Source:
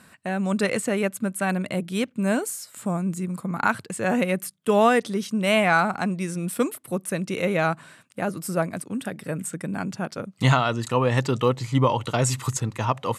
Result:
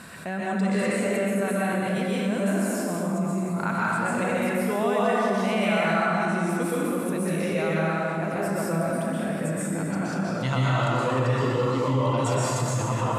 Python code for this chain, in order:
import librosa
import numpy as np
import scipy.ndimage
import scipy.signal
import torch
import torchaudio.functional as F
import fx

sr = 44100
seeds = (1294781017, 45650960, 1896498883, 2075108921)

y = fx.high_shelf(x, sr, hz=8700.0, db=-4.5)
y = fx.comb_fb(y, sr, f0_hz=340.0, decay_s=0.56, harmonics='all', damping=0.0, mix_pct=70)
y = fx.rev_plate(y, sr, seeds[0], rt60_s=2.6, hf_ratio=0.6, predelay_ms=110, drr_db=-8.5)
y = fx.env_flatten(y, sr, amount_pct=50)
y = y * librosa.db_to_amplitude(-4.0)